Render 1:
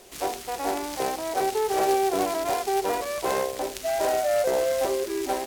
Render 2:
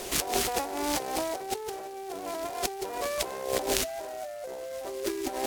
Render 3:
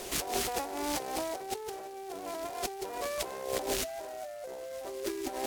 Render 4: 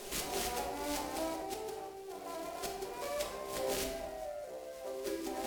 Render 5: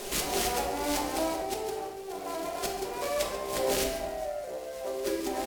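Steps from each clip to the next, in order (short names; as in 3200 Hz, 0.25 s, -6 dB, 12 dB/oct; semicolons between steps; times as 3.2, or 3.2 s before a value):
negative-ratio compressor -37 dBFS, ratio -1; gain +3 dB
soft clip -15.5 dBFS, distortion -19 dB; gain -3.5 dB
shoebox room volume 570 m³, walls mixed, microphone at 1.3 m; gain -6.5 dB
echo 0.138 s -14.5 dB; gain +7.5 dB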